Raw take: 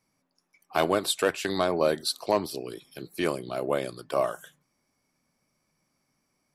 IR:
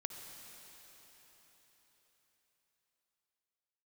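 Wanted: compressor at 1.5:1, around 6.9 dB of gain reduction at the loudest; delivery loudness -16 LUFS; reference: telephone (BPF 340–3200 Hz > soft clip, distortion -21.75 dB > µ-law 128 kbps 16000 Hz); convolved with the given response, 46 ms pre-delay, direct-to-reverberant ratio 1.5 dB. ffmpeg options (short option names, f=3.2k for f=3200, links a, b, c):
-filter_complex "[0:a]acompressor=threshold=-38dB:ratio=1.5,asplit=2[a][b];[1:a]atrim=start_sample=2205,adelay=46[c];[b][c]afir=irnorm=-1:irlink=0,volume=0dB[d];[a][d]amix=inputs=2:normalize=0,highpass=340,lowpass=3.2k,asoftclip=threshold=-19.5dB,volume=18.5dB" -ar 16000 -c:a pcm_mulaw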